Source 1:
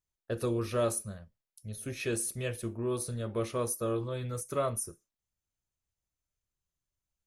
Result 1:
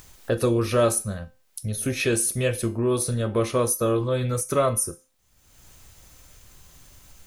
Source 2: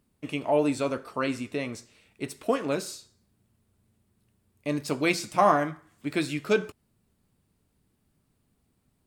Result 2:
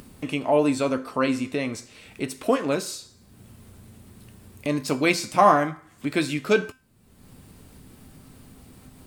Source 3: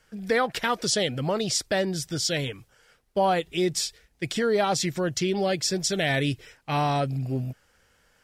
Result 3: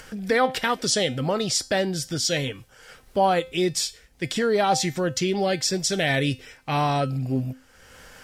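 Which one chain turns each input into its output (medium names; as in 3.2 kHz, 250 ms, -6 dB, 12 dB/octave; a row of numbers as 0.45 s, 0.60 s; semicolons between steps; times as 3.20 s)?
in parallel at +1.5 dB: upward compressor, threshold -27 dBFS; on the sum: feedback comb 260 Hz, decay 0.33 s, harmonics all, mix 60%; normalise loudness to -24 LUFS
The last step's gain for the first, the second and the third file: +9.5 dB, +4.0 dB, +2.0 dB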